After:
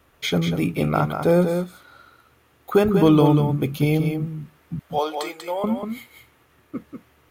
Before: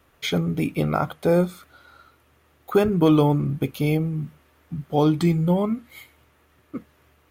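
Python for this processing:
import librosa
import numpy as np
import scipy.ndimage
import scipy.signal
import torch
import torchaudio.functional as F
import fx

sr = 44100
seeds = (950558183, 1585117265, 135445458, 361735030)

y = fx.highpass(x, sr, hz=510.0, slope=24, at=(4.79, 5.64))
y = y + 10.0 ** (-6.5 / 20.0) * np.pad(y, (int(191 * sr / 1000.0), 0))[:len(y)]
y = y * 10.0 ** (1.5 / 20.0)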